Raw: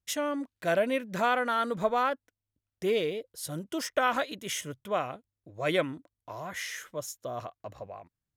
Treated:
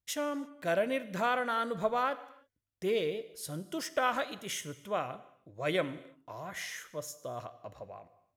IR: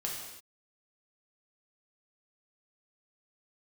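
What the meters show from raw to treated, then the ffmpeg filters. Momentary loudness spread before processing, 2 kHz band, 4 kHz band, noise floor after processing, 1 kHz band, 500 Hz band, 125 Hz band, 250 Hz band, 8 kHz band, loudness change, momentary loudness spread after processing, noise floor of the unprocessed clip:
16 LU, -3.5 dB, -3.5 dB, -82 dBFS, -3.5 dB, -3.0 dB, -2.5 dB, -3.5 dB, -3.5 dB, -3.5 dB, 17 LU, under -85 dBFS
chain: -filter_complex "[0:a]asplit=2[a][b];[1:a]atrim=start_sample=2205[c];[b][c]afir=irnorm=-1:irlink=0,volume=-13dB[d];[a][d]amix=inputs=2:normalize=0,volume=-5dB"

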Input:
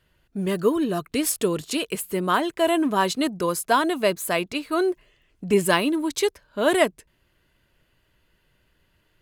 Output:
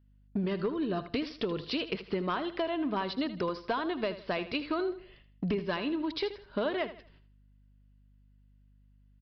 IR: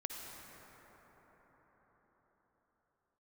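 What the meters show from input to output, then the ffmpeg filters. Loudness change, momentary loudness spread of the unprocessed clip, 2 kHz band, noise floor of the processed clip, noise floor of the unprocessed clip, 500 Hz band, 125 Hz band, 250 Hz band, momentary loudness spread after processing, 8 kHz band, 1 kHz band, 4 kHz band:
-10.0 dB, 7 LU, -11.0 dB, -62 dBFS, -68 dBFS, -10.0 dB, -6.5 dB, -8.0 dB, 4 LU, under -35 dB, -11.5 dB, -8.5 dB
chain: -af "agate=range=-26dB:threshold=-58dB:ratio=16:detection=peak,acompressor=threshold=-32dB:ratio=16,aresample=11025,aeval=exprs='clip(val(0),-1,0.0335)':c=same,aresample=44100,aeval=exprs='val(0)+0.000501*(sin(2*PI*50*n/s)+sin(2*PI*2*50*n/s)/2+sin(2*PI*3*50*n/s)/3+sin(2*PI*4*50*n/s)/4+sin(2*PI*5*50*n/s)/5)':c=same,aecho=1:1:79|158|237:0.224|0.0739|0.0244,volume=4dB"

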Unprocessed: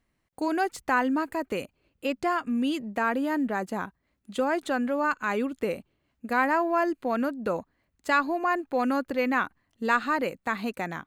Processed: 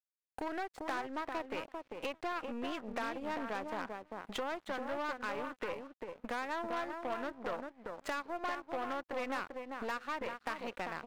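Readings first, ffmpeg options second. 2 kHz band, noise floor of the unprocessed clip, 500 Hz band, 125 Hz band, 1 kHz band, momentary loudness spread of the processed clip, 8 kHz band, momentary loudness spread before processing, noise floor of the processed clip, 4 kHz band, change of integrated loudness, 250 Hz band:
-12.0 dB, -76 dBFS, -10.5 dB, -12.5 dB, -11.0 dB, 5 LU, -9.0 dB, 10 LU, -82 dBFS, -6.0 dB, -12.0 dB, -15.0 dB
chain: -filter_complex "[0:a]acrossover=split=480|3000[a][b][c];[b]dynaudnorm=f=190:g=5:m=9dB[d];[a][d][c]amix=inputs=3:normalize=0,highshelf=f=5k:g=-11.5,acompressor=threshold=-37dB:ratio=6,asplit=2[e][f];[f]adelay=395,lowpass=f=1k:p=1,volume=-4dB,asplit=2[g][h];[h]adelay=395,lowpass=f=1k:p=1,volume=0.19,asplit=2[i][j];[j]adelay=395,lowpass=f=1k:p=1,volume=0.19[k];[e][g][i][k]amix=inputs=4:normalize=0,aeval=exprs='0.0531*(cos(1*acos(clip(val(0)/0.0531,-1,1)))-cos(1*PI/2))+0.00841*(cos(4*acos(clip(val(0)/0.0531,-1,1)))-cos(4*PI/2))+0.00299*(cos(5*acos(clip(val(0)/0.0531,-1,1)))-cos(5*PI/2))+0.00299*(cos(8*acos(clip(val(0)/0.0531,-1,1)))-cos(8*PI/2))':c=same,lowshelf=f=290:g=-8,aeval=exprs='sgn(val(0))*max(abs(val(0))-0.00133,0)':c=same"

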